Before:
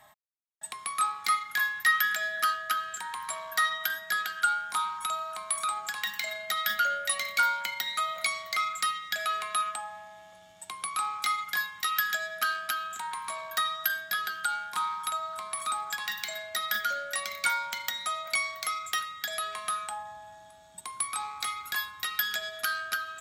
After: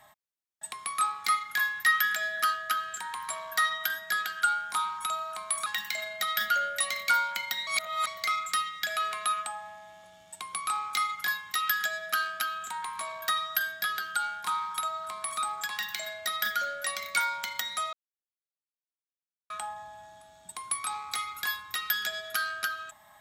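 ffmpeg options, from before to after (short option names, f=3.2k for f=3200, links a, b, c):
-filter_complex "[0:a]asplit=6[a][b][c][d][e][f];[a]atrim=end=5.662[g];[b]atrim=start=5.948:end=7.962[h];[c]atrim=start=7.958:end=8.362,asetpts=PTS-STARTPTS,areverse[i];[d]atrim=start=8.358:end=18.22,asetpts=PTS-STARTPTS,afade=t=out:st=9.858:d=0.004:c=hsin[j];[e]atrim=start=18.22:end=19.79,asetpts=PTS-STARTPTS,volume=0[k];[f]atrim=start=19.79,asetpts=PTS-STARTPTS,afade=t=in:d=0.004:c=hsin[l];[g][h]acrossfade=d=0.004:c1=hsin:c2=hsin[m];[m][i]acrossfade=d=0.004:c1=hsin:c2=hsin[n];[j][k][l]concat=n=3:v=0:a=1[o];[n][o]acrossfade=d=0.004:c1=hsin:c2=hsin"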